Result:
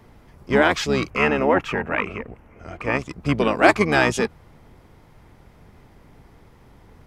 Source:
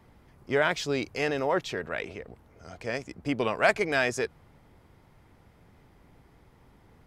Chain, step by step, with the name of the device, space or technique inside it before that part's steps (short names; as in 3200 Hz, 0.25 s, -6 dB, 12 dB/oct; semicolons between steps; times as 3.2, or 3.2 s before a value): 1.1–2.99 resonant high shelf 3200 Hz -6.5 dB, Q 3; octave pedal (harmoniser -12 st -4 dB); gain +6.5 dB